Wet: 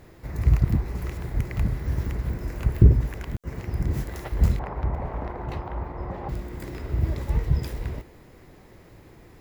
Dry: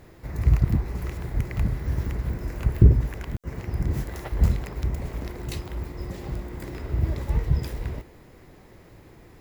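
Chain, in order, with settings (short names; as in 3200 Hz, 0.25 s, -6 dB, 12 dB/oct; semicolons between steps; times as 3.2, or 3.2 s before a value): 4.59–6.29 EQ curve 360 Hz 0 dB, 850 Hz +12 dB, 7800 Hz -22 dB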